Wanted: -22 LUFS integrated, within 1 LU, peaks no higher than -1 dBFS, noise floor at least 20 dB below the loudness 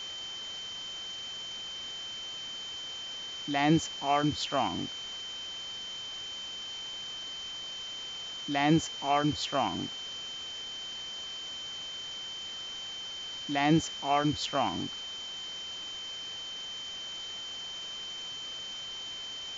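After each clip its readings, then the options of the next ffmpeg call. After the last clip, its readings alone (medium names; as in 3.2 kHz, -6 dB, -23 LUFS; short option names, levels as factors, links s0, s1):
steady tone 3.1 kHz; tone level -38 dBFS; noise floor -41 dBFS; noise floor target -54 dBFS; loudness -33.5 LUFS; peak level -13.0 dBFS; loudness target -22.0 LUFS
-> -af "bandreject=f=3100:w=30"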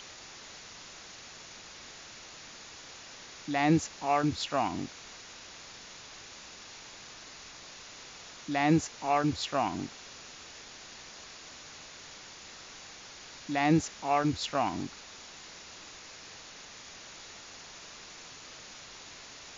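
steady tone not found; noise floor -49 dBFS; noise floor target -50 dBFS
-> -af "afftdn=nr=6:nf=-49"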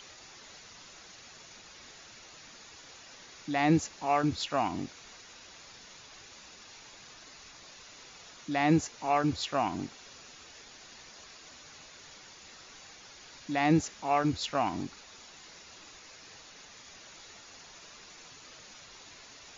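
noise floor -52 dBFS; loudness -30.0 LUFS; peak level -13.5 dBFS; loudness target -22.0 LUFS
-> -af "volume=2.51"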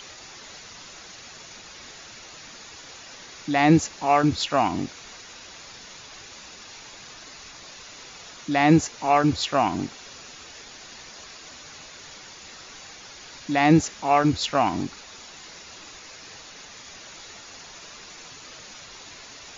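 loudness -22.0 LUFS; peak level -5.5 dBFS; noise floor -44 dBFS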